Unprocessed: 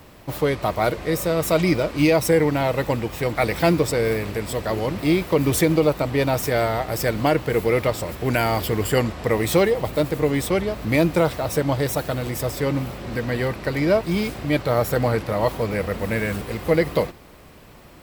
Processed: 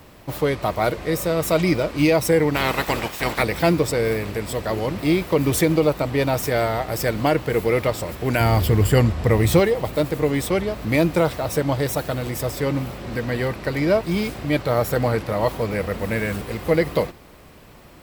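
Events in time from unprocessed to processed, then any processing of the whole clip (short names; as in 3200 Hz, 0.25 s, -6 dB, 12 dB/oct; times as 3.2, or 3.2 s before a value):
2.54–3.41 spectral limiter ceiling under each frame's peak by 18 dB
8.4–9.6 bell 81 Hz +11.5 dB 2.1 oct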